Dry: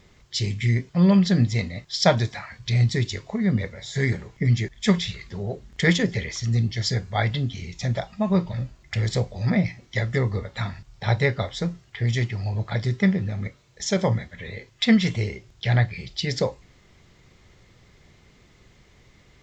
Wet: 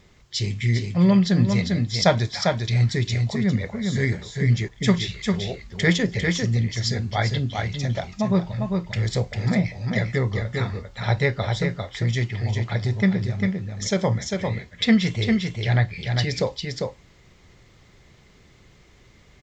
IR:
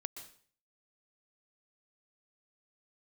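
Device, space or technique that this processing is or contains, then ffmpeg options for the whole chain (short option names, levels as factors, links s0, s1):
ducked delay: -filter_complex "[0:a]asplit=3[s0][s1][s2];[s1]adelay=399,volume=0.631[s3];[s2]apad=whole_len=874057[s4];[s3][s4]sidechaincompress=threshold=0.0631:ratio=8:attack=30:release=111[s5];[s0][s5]amix=inputs=2:normalize=0"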